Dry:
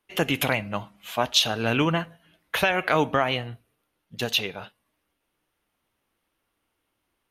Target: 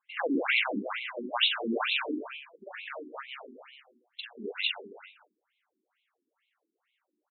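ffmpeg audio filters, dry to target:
-filter_complex "[0:a]lowpass=3.8k,highshelf=f=2.6k:g=9,asettb=1/sr,asplit=3[a][b][c];[a]atrim=end=1.854[d];[b]atrim=start=1.85:end=4.31,asetpts=PTS-STARTPTS,afade=t=in:d=0.004:c=qsin,afade=t=out:st=2.456:d=0.004:c=qsin,acompressor=threshold=-36dB:ratio=6[e];[c]atrim=start=4.306[f];[d][e]acrossfade=d=0.004:c1=hsin:c2=qsin[g];[g][f]acrossfade=d=0.004:c1=qsin:c2=hsin,asplit=2[h][i];[i]adelay=43,volume=-2dB[j];[h][j]amix=inputs=2:normalize=0,aecho=1:1:160|296|411.6|509.9|593.4:0.631|0.398|0.251|0.158|0.1,afftfilt=real='re*between(b*sr/1024,280*pow(3000/280,0.5+0.5*sin(2*PI*2.2*pts/sr))/1.41,280*pow(3000/280,0.5+0.5*sin(2*PI*2.2*pts/sr))*1.41)':imag='im*between(b*sr/1024,280*pow(3000/280,0.5+0.5*sin(2*PI*2.2*pts/sr))/1.41,280*pow(3000/280,0.5+0.5*sin(2*PI*2.2*pts/sr))*1.41)':win_size=1024:overlap=0.75,volume=-2dB"

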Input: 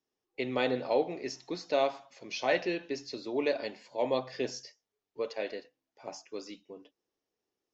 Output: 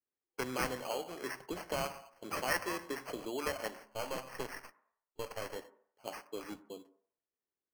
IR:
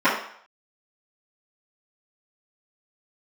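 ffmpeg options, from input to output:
-filter_complex "[0:a]asettb=1/sr,asplit=3[a][b][c];[a]atrim=end=3.844[d];[b]atrim=start=3.84:end=5.56,asetpts=PTS-STARTPTS,afade=t=in:d=0.004:c=qsin,afade=t=out:st=1.716:d=0.004:c=qsin,aeval=exprs='if(lt(val(0),0),0.251*val(0),val(0))':c=same[e];[c]atrim=start=5.556[f];[d][e]acrossfade=d=0.004:c1=hsin:c2=qsin[g];[g][f]acrossfade=d=0.004:c1=qsin:c2=hsin,agate=range=-13dB:threshold=-51dB:ratio=16:detection=peak,adynamicequalizer=threshold=0.00631:dfrequency=1100:dqfactor=0.81:tfrequency=1100:tqfactor=0.81:attack=5:release=100:ratio=0.375:range=3.5:mode=boostabove:tftype=bell,acrossover=split=1800[h][i];[h]acompressor=threshold=-37dB:ratio=6[j];[j][i]amix=inputs=2:normalize=0,acrusher=samples=12:mix=1:aa=0.000001,asplit=2[k][l];[1:a]atrim=start_sample=2205,lowpass=1.6k,adelay=93[m];[l][m]afir=irnorm=-1:irlink=0,volume=-39dB[n];[k][n]amix=inputs=2:normalize=0"

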